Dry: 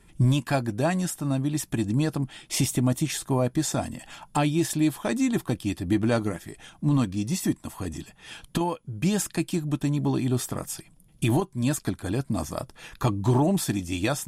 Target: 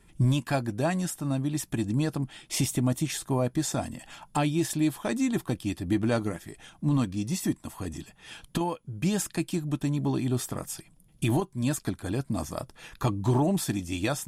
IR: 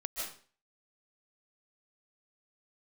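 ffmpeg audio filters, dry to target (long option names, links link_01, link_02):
-af "volume=-2.5dB"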